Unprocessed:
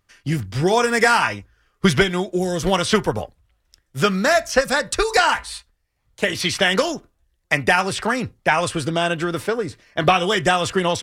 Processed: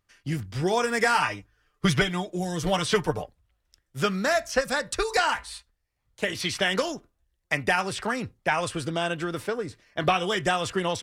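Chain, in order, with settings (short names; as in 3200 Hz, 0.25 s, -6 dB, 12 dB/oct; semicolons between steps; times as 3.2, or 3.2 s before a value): 1.14–3.23 comb 6.7 ms, depth 61%; gain -7 dB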